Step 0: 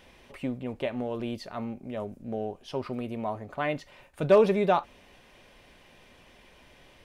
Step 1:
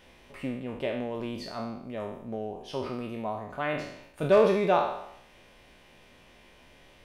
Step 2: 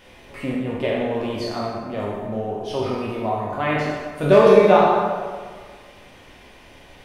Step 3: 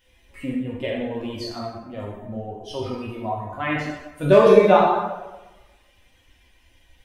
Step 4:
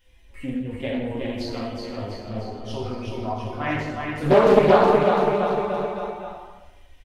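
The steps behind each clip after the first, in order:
peak hold with a decay on every bin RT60 0.76 s; level −2.5 dB
dense smooth reverb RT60 1.7 s, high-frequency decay 0.6×, DRR −2 dB; level +5.5 dB
spectral dynamics exaggerated over time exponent 1.5; level +1 dB
low-shelf EQ 63 Hz +11.5 dB; on a send: bouncing-ball delay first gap 370 ms, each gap 0.9×, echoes 5; on the sum: highs frequency-modulated by the lows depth 0.56 ms; level −2.5 dB

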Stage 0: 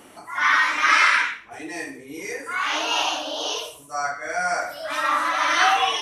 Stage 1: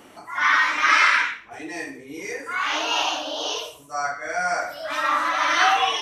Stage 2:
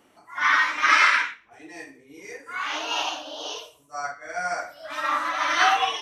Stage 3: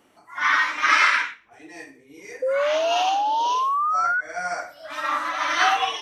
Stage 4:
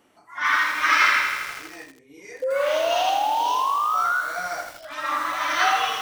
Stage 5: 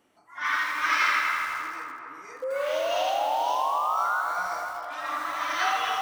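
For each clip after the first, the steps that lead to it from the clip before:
parametric band 10,000 Hz −8 dB 0.54 octaves
expander for the loud parts 1.5 to 1, over −38 dBFS
sound drawn into the spectrogram rise, 0:02.42–0:04.21, 510–1,500 Hz −22 dBFS
feedback echo at a low word length 81 ms, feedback 80%, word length 6 bits, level −7 dB; level −1.5 dB
feedback echo with a band-pass in the loop 256 ms, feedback 69%, band-pass 830 Hz, level −3.5 dB; level −6 dB

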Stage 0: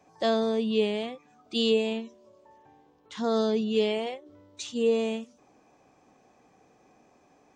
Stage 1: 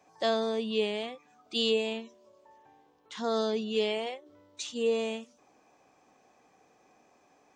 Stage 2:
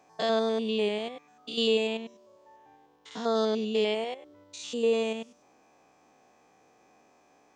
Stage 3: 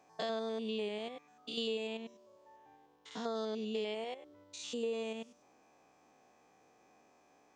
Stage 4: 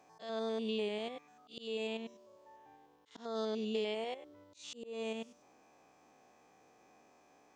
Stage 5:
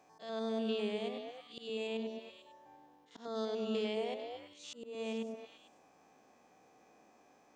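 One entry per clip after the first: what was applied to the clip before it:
low-shelf EQ 360 Hz −9 dB
spectrum averaged block by block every 100 ms; level +3 dB
downward compressor 3 to 1, threshold −31 dBFS, peak gain reduction 8.5 dB; level −4.5 dB
volume swells 229 ms; level +1.5 dB
echo through a band-pass that steps 112 ms, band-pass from 220 Hz, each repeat 1.4 octaves, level 0 dB; level −1 dB

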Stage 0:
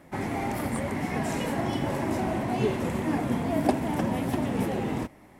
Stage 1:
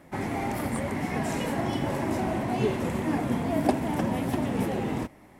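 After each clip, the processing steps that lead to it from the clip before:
no processing that can be heard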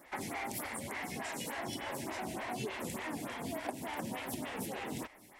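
tilt shelving filter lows −8.5 dB, about 1,300 Hz
downward compressor, threshold −35 dBFS, peak gain reduction 13 dB
phaser with staggered stages 3.4 Hz
level +1.5 dB

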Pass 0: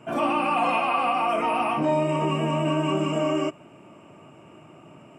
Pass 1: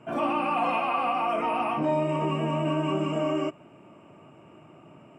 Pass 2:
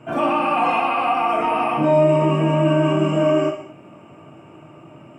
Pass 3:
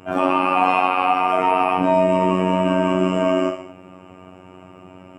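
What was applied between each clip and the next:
high-shelf EQ 4,300 Hz −8 dB; level −2.5 dB
reverb whose tail is shaped and stops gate 250 ms falling, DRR 3 dB; level +5.5 dB
phases set to zero 92.2 Hz; level +3.5 dB

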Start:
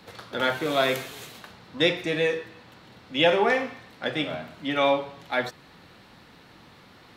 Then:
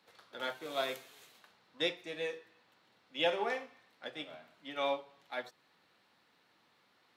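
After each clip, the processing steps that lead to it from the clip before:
dynamic equaliser 1,800 Hz, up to −4 dB, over −36 dBFS, Q 1
high-pass filter 520 Hz 6 dB per octave
expander for the loud parts 1.5 to 1, over −38 dBFS
level −7 dB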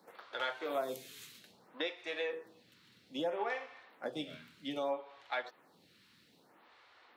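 low-shelf EQ 320 Hz +3 dB
downward compressor 5 to 1, threshold −40 dBFS, peak gain reduction 13.5 dB
phaser with staggered stages 0.62 Hz
level +8.5 dB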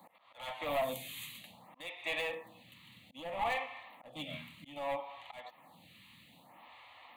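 hard clipping −36.5 dBFS, distortion −9 dB
volume swells 340 ms
phaser with its sweep stopped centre 1,500 Hz, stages 6
level +10 dB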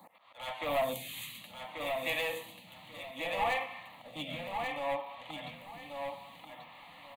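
repeating echo 1,137 ms, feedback 23%, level −5 dB
level +2.5 dB

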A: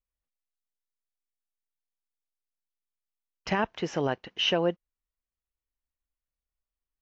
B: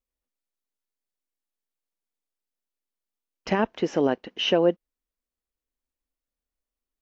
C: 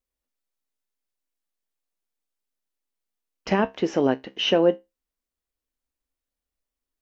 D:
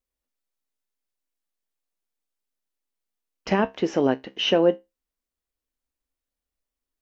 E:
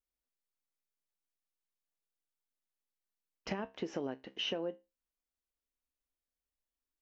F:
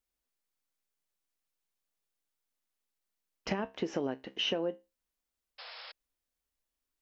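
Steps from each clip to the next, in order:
graphic EQ with 10 bands 125 Hz −6 dB, 250 Hz +9 dB, 500 Hz +5 dB
tuned comb filter 66 Hz, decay 0.2 s, harmonics all, mix 60%; level +5 dB
no processing that can be heard
downward compressor 10 to 1, threshold −25 dBFS, peak gain reduction 12.5 dB; level −8.5 dB
sound drawn into the spectrogram noise, 0:05.58–0:05.92, 460–5,400 Hz −52 dBFS; level +4.5 dB

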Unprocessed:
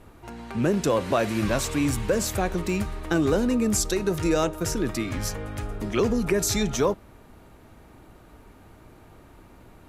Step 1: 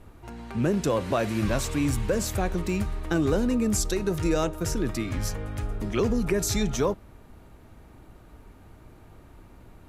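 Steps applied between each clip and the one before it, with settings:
low-shelf EQ 140 Hz +6.5 dB
level −3 dB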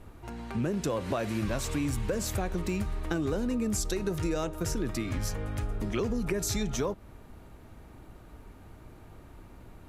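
downward compressor 3 to 1, threshold −28 dBFS, peak gain reduction 7 dB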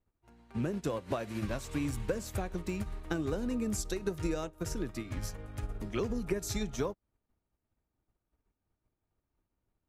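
expander for the loud parts 2.5 to 1, over −51 dBFS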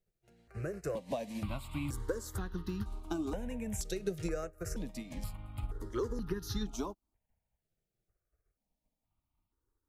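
step-sequenced phaser 2.1 Hz 270–2,300 Hz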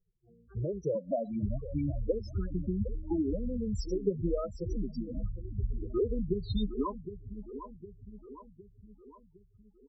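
repeating echo 760 ms, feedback 51%, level −12 dB
low-pass filter sweep 5,200 Hz → 1,000 Hz, 0:06.35–0:07.01
spectral peaks only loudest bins 8
level +6 dB

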